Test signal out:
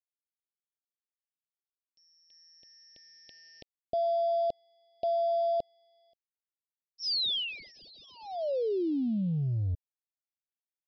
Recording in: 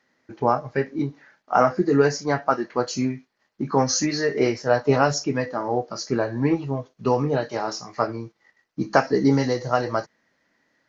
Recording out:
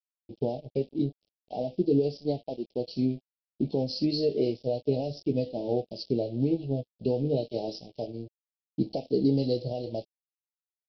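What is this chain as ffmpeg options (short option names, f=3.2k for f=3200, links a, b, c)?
-af "alimiter=limit=-14dB:level=0:latency=1:release=399,aresample=11025,aeval=exprs='sgn(val(0))*max(abs(val(0))-0.00596,0)':c=same,aresample=44100,asuperstop=centerf=1400:order=8:qfactor=0.59"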